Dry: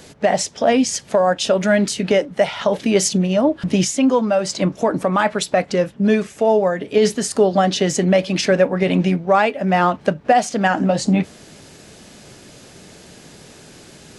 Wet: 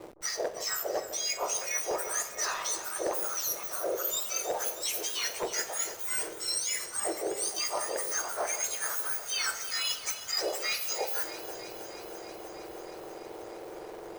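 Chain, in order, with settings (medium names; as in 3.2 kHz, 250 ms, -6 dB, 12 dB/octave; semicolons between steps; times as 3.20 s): spectrum inverted on a logarithmic axis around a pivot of 1.9 kHz; reverse; compression 16:1, threshold -28 dBFS, peak gain reduction 19 dB; reverse; wavefolder -23 dBFS; Schroeder reverb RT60 0.72 s, combs from 28 ms, DRR 9.5 dB; hysteresis with a dead band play -38 dBFS; on a send: echo whose repeats swap between lows and highs 158 ms, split 1.3 kHz, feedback 87%, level -12.5 dB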